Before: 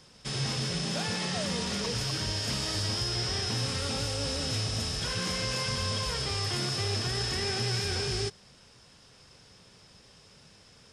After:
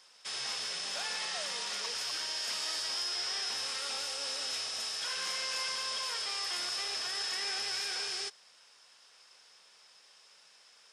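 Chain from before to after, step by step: HPF 840 Hz 12 dB/oct; gain -2 dB

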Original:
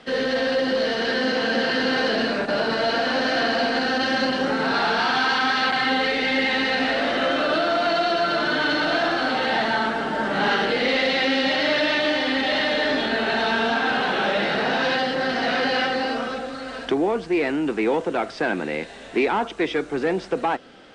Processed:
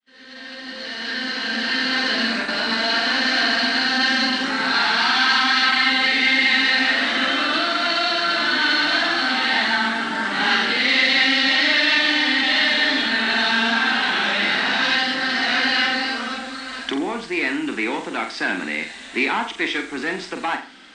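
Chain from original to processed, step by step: opening faded in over 2.38 s; graphic EQ 125/250/500/1000/2000/4000/8000 Hz -10/+9/-8/+5/+9/+8/+12 dB; flutter echo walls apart 7.5 m, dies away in 0.35 s; gain -5.5 dB

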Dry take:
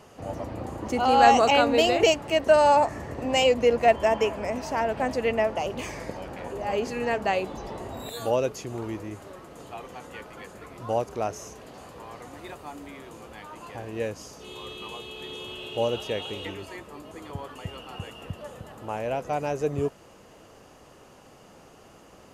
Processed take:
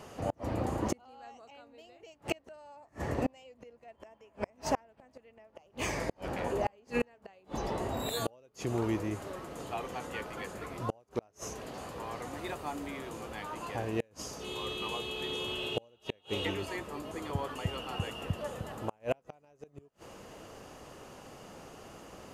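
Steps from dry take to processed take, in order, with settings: flipped gate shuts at -20 dBFS, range -36 dB; gain +2 dB

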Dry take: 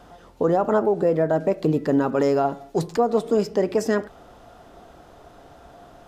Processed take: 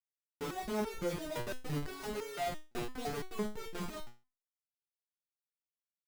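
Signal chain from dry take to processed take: thirty-one-band EQ 100 Hz +4 dB, 1000 Hz +8 dB, 3150 Hz -10 dB; Schmitt trigger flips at -26 dBFS; stepped resonator 5.9 Hz 120–450 Hz; gain -2.5 dB

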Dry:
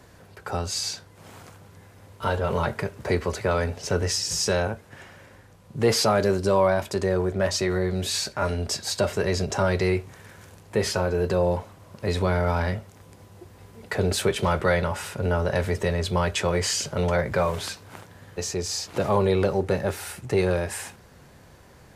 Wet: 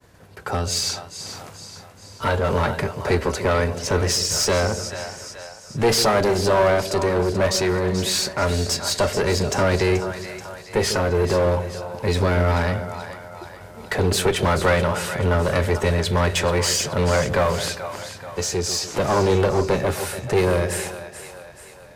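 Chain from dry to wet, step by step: expander -45 dBFS; split-band echo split 550 Hz, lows 0.145 s, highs 0.432 s, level -11.5 dB; one-sided clip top -24.5 dBFS; gain +5.5 dB

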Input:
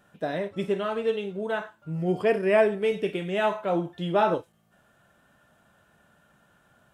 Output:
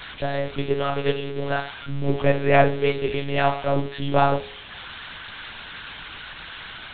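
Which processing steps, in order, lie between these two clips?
switching spikes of -21.5 dBFS; monotone LPC vocoder at 8 kHz 140 Hz; de-hum 59.57 Hz, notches 29; gain +4.5 dB

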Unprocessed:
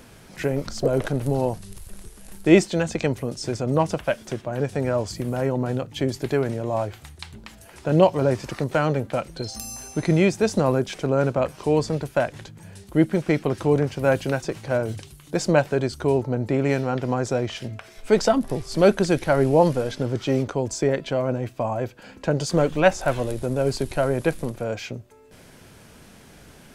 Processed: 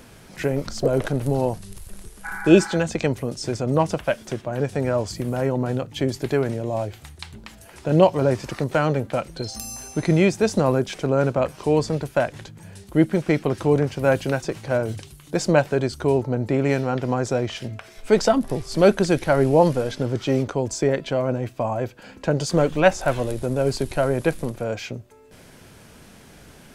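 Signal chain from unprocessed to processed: 2.27–2.74 spectral repair 690–2400 Hz after; 6.53–7.91 dynamic EQ 1200 Hz, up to -7 dB, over -41 dBFS, Q 1.2; gain +1 dB

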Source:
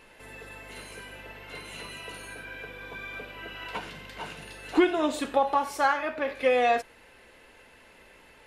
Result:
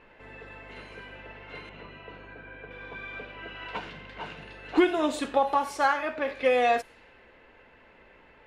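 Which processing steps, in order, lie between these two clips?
low-pass opened by the level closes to 2200 Hz, open at -23 dBFS; 1.69–2.71 tape spacing loss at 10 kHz 27 dB

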